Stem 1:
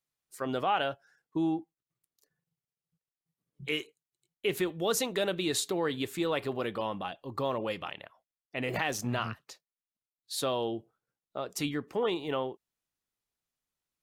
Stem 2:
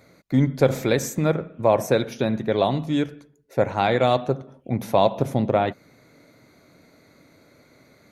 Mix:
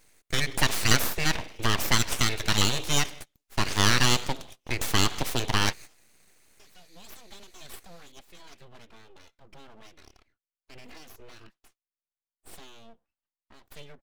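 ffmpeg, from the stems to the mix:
-filter_complex "[0:a]equalizer=f=1.9k:w=0.52:g=4.5,acrossover=split=260|3000[a][b][c];[b]acompressor=threshold=-45dB:ratio=3[d];[a][d][c]amix=inputs=3:normalize=0,asplit=2[e][f];[f]adelay=2.6,afreqshift=1[g];[e][g]amix=inputs=2:normalize=1,adelay=2150,volume=-6dB[h];[1:a]agate=range=-19dB:threshold=-42dB:ratio=16:detection=peak,acrossover=split=490|2500[i][j][k];[i]acompressor=threshold=-25dB:ratio=4[l];[j]acompressor=threshold=-20dB:ratio=4[m];[k]acompressor=threshold=-54dB:ratio=4[n];[l][m][n]amix=inputs=3:normalize=0,aexciter=amount=9.6:drive=9.5:freq=2.1k,volume=-2dB,asplit=2[o][p];[p]apad=whole_len=713320[q];[h][q]sidechaincompress=threshold=-43dB:ratio=4:attack=7.5:release=778[r];[r][o]amix=inputs=2:normalize=0,highshelf=f=11k:g=-10,aeval=exprs='abs(val(0))':c=same"

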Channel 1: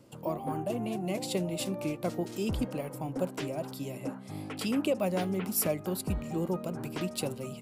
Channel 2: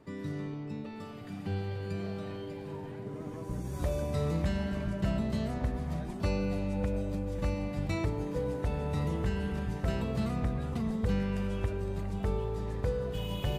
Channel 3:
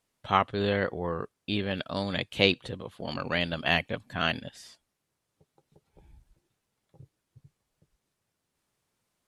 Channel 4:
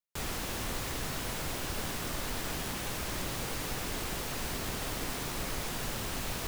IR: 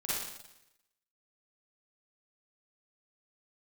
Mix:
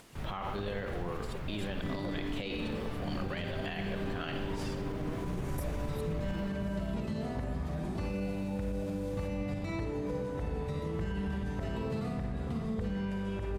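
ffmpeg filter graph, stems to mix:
-filter_complex "[0:a]aphaser=in_gain=1:out_gain=1:delay=3:decay=0.73:speed=0.48:type=triangular,volume=-15dB[a];[1:a]acompressor=threshold=-33dB:ratio=6,adelay=1750,volume=-1.5dB,asplit=2[b][c];[c]volume=-3dB[d];[2:a]acompressor=mode=upward:threshold=-28dB:ratio=2.5,volume=-7.5dB,asplit=3[e][f][g];[f]volume=-10dB[h];[3:a]bass=f=250:g=9,treble=f=4k:g=-15,volume=-7.5dB[i];[g]apad=whole_len=335718[j];[a][j]sidechaingate=range=-33dB:threshold=-59dB:ratio=16:detection=peak[k];[4:a]atrim=start_sample=2205[l];[d][h]amix=inputs=2:normalize=0[m];[m][l]afir=irnorm=-1:irlink=0[n];[k][b][e][i][n]amix=inputs=5:normalize=0,highshelf=f=4.5k:g=-5,alimiter=level_in=2.5dB:limit=-24dB:level=0:latency=1:release=37,volume=-2.5dB"

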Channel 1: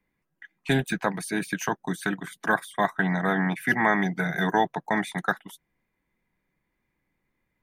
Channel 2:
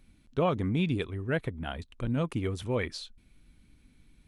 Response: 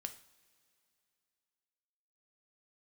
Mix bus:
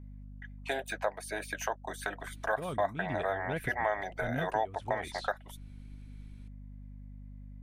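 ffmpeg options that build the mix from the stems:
-filter_complex "[0:a]highpass=f=590:t=q:w=4.9,aeval=exprs='val(0)+0.00891*(sin(2*PI*50*n/s)+sin(2*PI*2*50*n/s)/2+sin(2*PI*3*50*n/s)/3+sin(2*PI*4*50*n/s)/4+sin(2*PI*5*50*n/s)/5)':c=same,volume=-4.5dB,asplit=2[a][b];[1:a]highshelf=f=9k:g=-7,adelay=2200,volume=2.5dB[c];[b]apad=whole_len=285594[d];[c][d]sidechaincompress=threshold=-28dB:ratio=8:attack=40:release=590[e];[a][e]amix=inputs=2:normalize=0,acompressor=threshold=-34dB:ratio=2"

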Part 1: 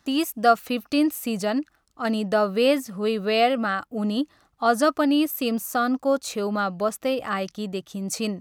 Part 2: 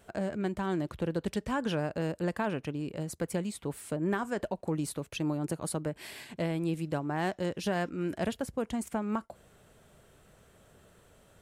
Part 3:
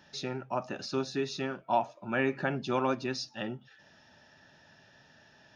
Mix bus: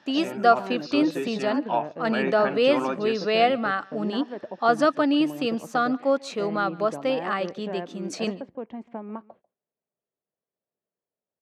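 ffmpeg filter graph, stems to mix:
-filter_complex "[0:a]volume=0dB,asplit=2[a][b];[b]volume=-24dB[c];[1:a]lowpass=1.8k,equalizer=f=1.4k:w=3.1:g=-9,agate=range=-29dB:threshold=-50dB:ratio=16:detection=peak,volume=-1dB,asplit=2[d][e];[e]volume=-22.5dB[f];[2:a]volume=2dB[g];[c][f]amix=inputs=2:normalize=0,aecho=0:1:143:1[h];[a][d][g][h]amix=inputs=4:normalize=0,highpass=230,lowpass=4.4k"

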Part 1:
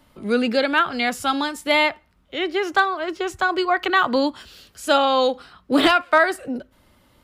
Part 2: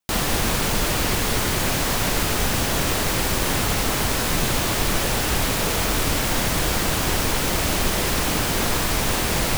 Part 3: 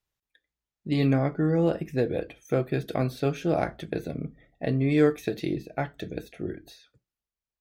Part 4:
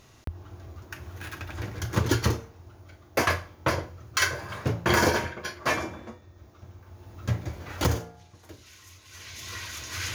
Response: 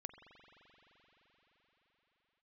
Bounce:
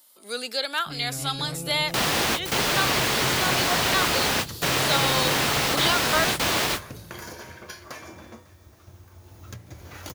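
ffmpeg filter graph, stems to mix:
-filter_complex "[0:a]highpass=490,aexciter=amount=3.1:drive=6.5:freq=3.5k,volume=-9.5dB[a];[1:a]highpass=f=340:p=1,adelay=1850,volume=1dB[b];[2:a]asubboost=boost=11:cutoff=110,highshelf=f=2.2k:g=11.5,volume=-9.5dB,asplit=3[c][d][e];[d]volume=-7.5dB[f];[3:a]acompressor=threshold=-33dB:ratio=6,adelay=2250,volume=-1.5dB,asplit=2[g][h];[h]volume=-22dB[i];[e]apad=whole_len=503960[j];[b][j]sidechaingate=range=-48dB:threshold=-49dB:ratio=16:detection=peak[k];[c][g]amix=inputs=2:normalize=0,acompressor=threshold=-39dB:ratio=2,volume=0dB[l];[f][i]amix=inputs=2:normalize=0,aecho=0:1:273|546|819|1092|1365|1638|1911|2184:1|0.56|0.314|0.176|0.0983|0.0551|0.0308|0.0173[m];[a][k][l][m]amix=inputs=4:normalize=0,acrossover=split=5000[n][o];[o]acompressor=threshold=-41dB:ratio=4:attack=1:release=60[p];[n][p]amix=inputs=2:normalize=0,highshelf=f=5.1k:g=10"

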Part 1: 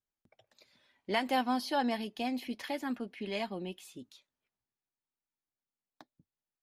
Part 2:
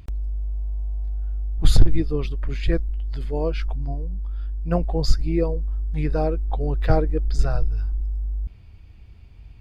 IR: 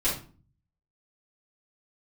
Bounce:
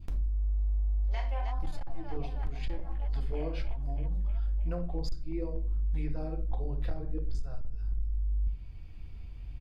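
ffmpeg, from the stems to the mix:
-filter_complex "[0:a]afwtdn=0.01,lowshelf=f=440:t=q:w=1.5:g=-13,volume=-9dB,asplit=3[a][b][c];[b]volume=-10.5dB[d];[c]volume=-5dB[e];[1:a]adynamicequalizer=threshold=0.00398:dfrequency=1700:dqfactor=1.1:tfrequency=1700:tqfactor=1.1:attack=5:release=100:ratio=0.375:range=2:mode=cutabove:tftype=bell,acompressor=threshold=-25dB:ratio=6,volume=-6dB,asplit=3[f][g][h];[g]volume=-10dB[i];[h]apad=whole_len=292144[j];[a][j]sidechaincompress=threshold=-38dB:ratio=8:attack=16:release=390[k];[2:a]atrim=start_sample=2205[l];[d][i]amix=inputs=2:normalize=0[m];[m][l]afir=irnorm=-1:irlink=0[n];[e]aecho=0:1:314|628|942|1256|1570|1884|2198|2512|2826|3140:1|0.6|0.36|0.216|0.13|0.0778|0.0467|0.028|0.0168|0.0101[o];[k][f][n][o]amix=inputs=4:normalize=0,aeval=exprs='clip(val(0),-1,0.106)':c=same,alimiter=limit=-24dB:level=0:latency=1:release=479"

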